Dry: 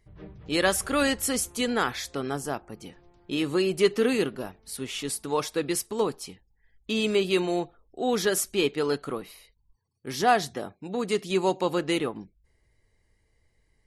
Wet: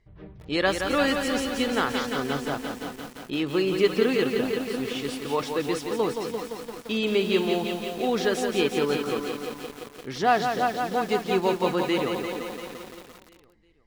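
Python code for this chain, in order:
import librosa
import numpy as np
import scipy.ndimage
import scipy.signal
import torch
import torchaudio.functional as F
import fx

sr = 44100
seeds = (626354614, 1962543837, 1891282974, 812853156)

y = scipy.signal.sosfilt(scipy.signal.butter(2, 4700.0, 'lowpass', fs=sr, output='sos'), x)
y = fx.echo_feedback(y, sr, ms=348, feedback_pct=45, wet_db=-10.5)
y = fx.echo_crushed(y, sr, ms=172, feedback_pct=80, bits=7, wet_db=-6.0)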